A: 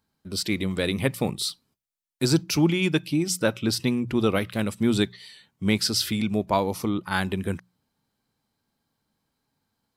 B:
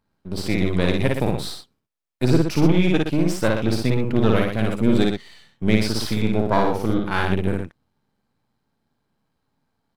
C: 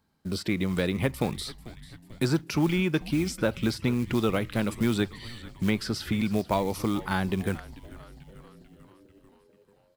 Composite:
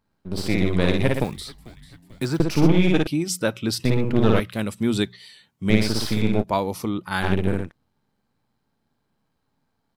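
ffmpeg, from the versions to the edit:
-filter_complex "[0:a]asplit=3[s0][s1][s2];[1:a]asplit=5[s3][s4][s5][s6][s7];[s3]atrim=end=1.242[s8];[2:a]atrim=start=1.238:end=2.402[s9];[s4]atrim=start=2.398:end=3.072[s10];[s0]atrim=start=3.068:end=3.852[s11];[s5]atrim=start=3.848:end=4.402[s12];[s1]atrim=start=4.398:end=5.702[s13];[s6]atrim=start=5.698:end=6.44[s14];[s2]atrim=start=6.4:end=7.25[s15];[s7]atrim=start=7.21[s16];[s8][s9]acrossfade=d=0.004:c1=hsin:c2=hsin[s17];[s17][s10]acrossfade=d=0.004:c1=hsin:c2=hsin[s18];[s18][s11]acrossfade=d=0.004:c1=hsin:c2=hsin[s19];[s19][s12]acrossfade=d=0.004:c1=hsin:c2=hsin[s20];[s20][s13]acrossfade=d=0.004:c1=hsin:c2=hsin[s21];[s21][s14]acrossfade=d=0.004:c1=hsin:c2=hsin[s22];[s22][s15]acrossfade=d=0.04:c1=tri:c2=tri[s23];[s23][s16]acrossfade=d=0.04:c1=tri:c2=tri"

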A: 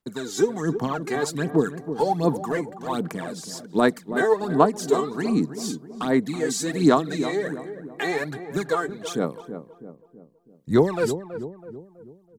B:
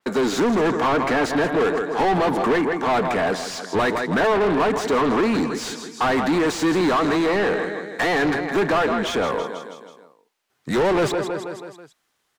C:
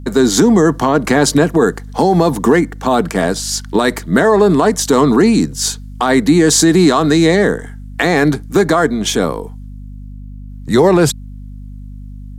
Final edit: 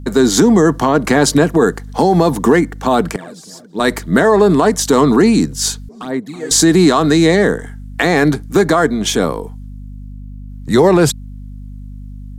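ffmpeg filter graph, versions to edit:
-filter_complex "[0:a]asplit=2[s0][s1];[2:a]asplit=3[s2][s3][s4];[s2]atrim=end=3.162[s5];[s0]atrim=start=3.158:end=3.802[s6];[s3]atrim=start=3.798:end=5.892[s7];[s1]atrim=start=5.888:end=6.512[s8];[s4]atrim=start=6.508[s9];[s5][s6]acrossfade=d=0.004:c1=hsin:c2=hsin[s10];[s10][s7]acrossfade=d=0.004:c1=hsin:c2=hsin[s11];[s11][s8]acrossfade=d=0.004:c1=hsin:c2=hsin[s12];[s12][s9]acrossfade=d=0.004:c1=hsin:c2=hsin"

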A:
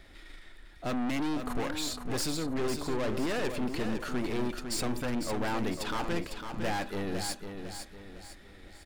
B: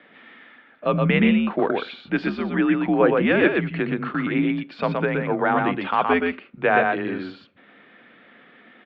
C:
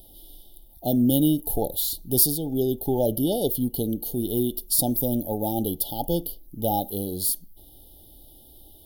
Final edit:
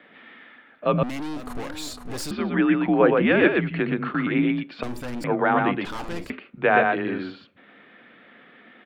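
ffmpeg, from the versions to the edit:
-filter_complex "[0:a]asplit=3[s0][s1][s2];[1:a]asplit=4[s3][s4][s5][s6];[s3]atrim=end=1.032[s7];[s0]atrim=start=1.028:end=2.312[s8];[s4]atrim=start=2.308:end=4.832[s9];[s1]atrim=start=4.828:end=5.242[s10];[s5]atrim=start=5.238:end=5.852[s11];[s2]atrim=start=5.848:end=6.302[s12];[s6]atrim=start=6.298[s13];[s7][s8]acrossfade=d=0.004:c1=hsin:c2=hsin[s14];[s14][s9]acrossfade=d=0.004:c1=hsin:c2=hsin[s15];[s15][s10]acrossfade=d=0.004:c1=hsin:c2=hsin[s16];[s16][s11]acrossfade=d=0.004:c1=hsin:c2=hsin[s17];[s17][s12]acrossfade=d=0.004:c1=hsin:c2=hsin[s18];[s18][s13]acrossfade=d=0.004:c1=hsin:c2=hsin"

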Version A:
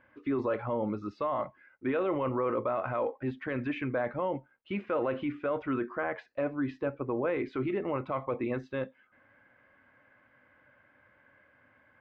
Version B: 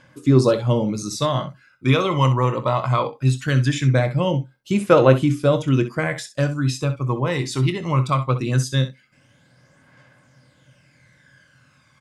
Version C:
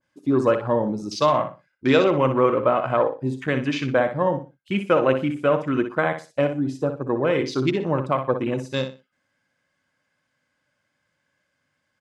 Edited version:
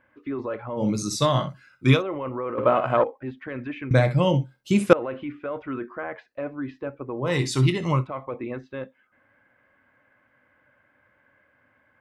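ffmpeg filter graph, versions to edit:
-filter_complex "[1:a]asplit=3[s0][s1][s2];[0:a]asplit=5[s3][s4][s5][s6][s7];[s3]atrim=end=0.86[s8];[s0]atrim=start=0.76:end=2.03[s9];[s4]atrim=start=1.93:end=2.582[s10];[2:a]atrim=start=2.578:end=3.042[s11];[s5]atrim=start=3.038:end=3.912[s12];[s1]atrim=start=3.908:end=4.932[s13];[s6]atrim=start=4.928:end=7.34[s14];[s2]atrim=start=7.18:end=8.07[s15];[s7]atrim=start=7.91[s16];[s8][s9]acrossfade=d=0.1:c1=tri:c2=tri[s17];[s17][s10]acrossfade=d=0.1:c1=tri:c2=tri[s18];[s18][s11]acrossfade=d=0.004:c1=hsin:c2=hsin[s19];[s19][s12]acrossfade=d=0.004:c1=hsin:c2=hsin[s20];[s20][s13]acrossfade=d=0.004:c1=hsin:c2=hsin[s21];[s21][s14]acrossfade=d=0.004:c1=hsin:c2=hsin[s22];[s22][s15]acrossfade=d=0.16:c1=tri:c2=tri[s23];[s23][s16]acrossfade=d=0.16:c1=tri:c2=tri"

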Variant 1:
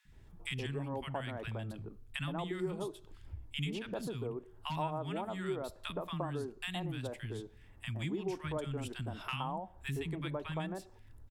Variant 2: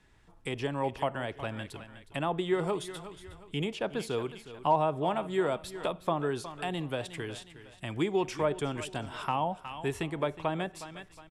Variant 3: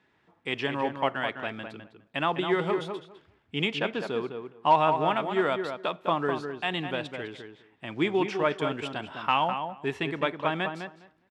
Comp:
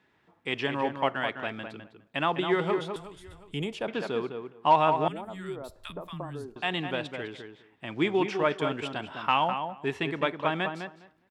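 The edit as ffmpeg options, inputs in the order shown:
-filter_complex "[2:a]asplit=3[s0][s1][s2];[s0]atrim=end=2.962[s3];[1:a]atrim=start=2.958:end=3.882[s4];[s1]atrim=start=3.878:end=5.082[s5];[0:a]atrim=start=5.078:end=6.562[s6];[s2]atrim=start=6.558[s7];[s3][s4]acrossfade=d=0.004:c1=hsin:c2=hsin[s8];[s8][s5]acrossfade=d=0.004:c1=hsin:c2=hsin[s9];[s9][s6]acrossfade=d=0.004:c1=hsin:c2=hsin[s10];[s10][s7]acrossfade=d=0.004:c1=hsin:c2=hsin"

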